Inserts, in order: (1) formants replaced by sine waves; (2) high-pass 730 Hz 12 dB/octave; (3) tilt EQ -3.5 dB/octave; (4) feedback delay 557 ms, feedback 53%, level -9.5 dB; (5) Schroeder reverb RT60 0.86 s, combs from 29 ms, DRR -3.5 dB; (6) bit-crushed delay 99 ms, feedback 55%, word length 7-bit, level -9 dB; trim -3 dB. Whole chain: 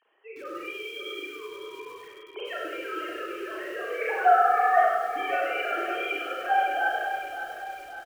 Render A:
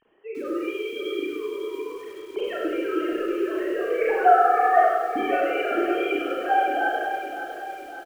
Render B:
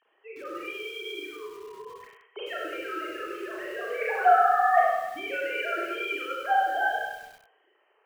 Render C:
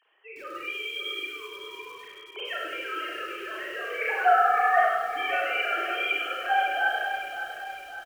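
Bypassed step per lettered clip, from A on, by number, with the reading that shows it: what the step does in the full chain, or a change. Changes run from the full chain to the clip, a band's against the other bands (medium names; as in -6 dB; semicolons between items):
2, momentary loudness spread change -3 LU; 4, momentary loudness spread change +3 LU; 3, 4 kHz band +7.5 dB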